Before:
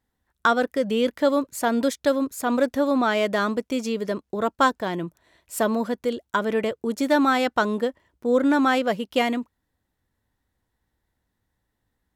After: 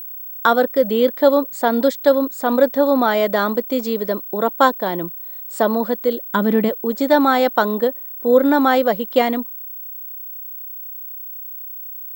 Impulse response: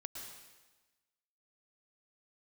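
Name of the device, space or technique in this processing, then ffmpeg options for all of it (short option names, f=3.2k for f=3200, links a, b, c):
old television with a line whistle: -filter_complex "[0:a]highpass=f=160:w=0.5412,highpass=f=160:w=1.3066,equalizer=f=530:t=q:w=4:g=5,equalizer=f=830:t=q:w=4:g=4,equalizer=f=2.6k:t=q:w=4:g=-8,equalizer=f=3.9k:t=q:w=4:g=3,equalizer=f=6.1k:t=q:w=4:g=-8,lowpass=f=7.9k:w=0.5412,lowpass=f=7.9k:w=1.3066,aeval=exprs='val(0)+0.0224*sin(2*PI*15734*n/s)':c=same,asplit=3[a][b][c];[a]afade=t=out:st=6.28:d=0.02[d];[b]asubboost=boost=5.5:cutoff=230,afade=t=in:st=6.28:d=0.02,afade=t=out:st=6.68:d=0.02[e];[c]afade=t=in:st=6.68:d=0.02[f];[d][e][f]amix=inputs=3:normalize=0,volume=3.5dB"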